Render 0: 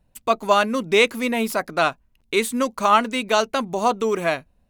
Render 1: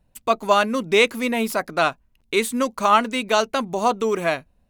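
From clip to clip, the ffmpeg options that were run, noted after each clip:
-af anull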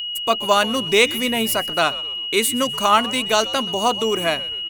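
-filter_complex "[0:a]aeval=exprs='val(0)+0.0447*sin(2*PI*2900*n/s)':c=same,asplit=4[a][b][c][d];[b]adelay=127,afreqshift=-110,volume=-19dB[e];[c]adelay=254,afreqshift=-220,volume=-26.1dB[f];[d]adelay=381,afreqshift=-330,volume=-33.3dB[g];[a][e][f][g]amix=inputs=4:normalize=0,crystalizer=i=1.5:c=0"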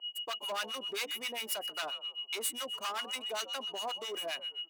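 -filter_complex "[0:a]asoftclip=type=hard:threshold=-18.5dB,acrossover=split=930[a][b];[a]aeval=exprs='val(0)*(1-1/2+1/2*cos(2*PI*7.5*n/s))':c=same[c];[b]aeval=exprs='val(0)*(1-1/2-1/2*cos(2*PI*7.5*n/s))':c=same[d];[c][d]amix=inputs=2:normalize=0,highpass=520,volume=-9dB"

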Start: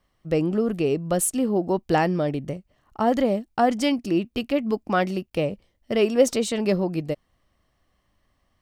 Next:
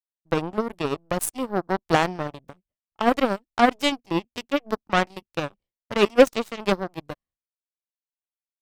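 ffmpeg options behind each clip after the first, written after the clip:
-af "agate=range=-33dB:threshold=-45dB:ratio=3:detection=peak,aeval=exprs='0.531*(cos(1*acos(clip(val(0)/0.531,-1,1)))-cos(1*PI/2))+0.00944*(cos(3*acos(clip(val(0)/0.531,-1,1)))-cos(3*PI/2))+0.0119*(cos(4*acos(clip(val(0)/0.531,-1,1)))-cos(4*PI/2))+0.0188*(cos(6*acos(clip(val(0)/0.531,-1,1)))-cos(6*PI/2))+0.075*(cos(7*acos(clip(val(0)/0.531,-1,1)))-cos(7*PI/2))':c=same,volume=3.5dB"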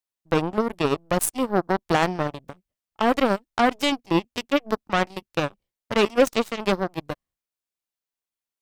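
-af "alimiter=limit=-11.5dB:level=0:latency=1:release=16,volume=4dB"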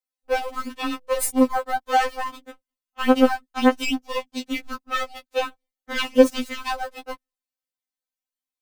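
-filter_complex "[0:a]asplit=2[a][b];[b]acrusher=bits=5:dc=4:mix=0:aa=0.000001,volume=-8.5dB[c];[a][c]amix=inputs=2:normalize=0,afftfilt=real='re*3.46*eq(mod(b,12),0)':imag='im*3.46*eq(mod(b,12),0)':win_size=2048:overlap=0.75,volume=-1dB"

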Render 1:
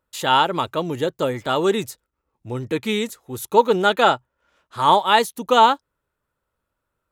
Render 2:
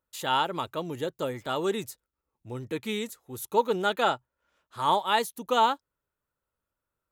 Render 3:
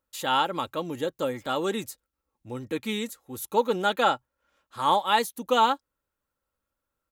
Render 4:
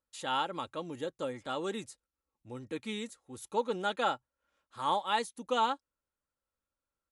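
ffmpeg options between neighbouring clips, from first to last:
-af "highshelf=f=11k:g=7.5,volume=-9dB"
-af "aecho=1:1:3.7:0.34,volume=1.5dB"
-af "volume=-7.5dB" -ar 24000 -c:a libmp3lame -b:a 112k

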